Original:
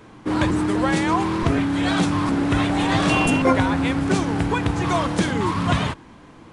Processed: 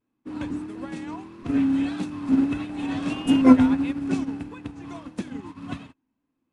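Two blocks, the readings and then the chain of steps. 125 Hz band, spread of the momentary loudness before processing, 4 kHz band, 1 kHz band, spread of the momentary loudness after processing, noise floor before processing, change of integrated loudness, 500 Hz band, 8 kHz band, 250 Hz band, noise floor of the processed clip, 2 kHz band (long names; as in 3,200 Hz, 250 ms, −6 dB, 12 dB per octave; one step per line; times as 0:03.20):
−13.5 dB, 4 LU, −12.0 dB, −12.5 dB, 20 LU, −45 dBFS, −2.0 dB, −10.0 dB, below −10 dB, −1.0 dB, −79 dBFS, −13.5 dB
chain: pitch vibrato 1.6 Hz 67 cents
hollow resonant body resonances 260/2,600 Hz, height 14 dB, ringing for 60 ms
expander for the loud parts 2.5 to 1, over −28 dBFS
level −3 dB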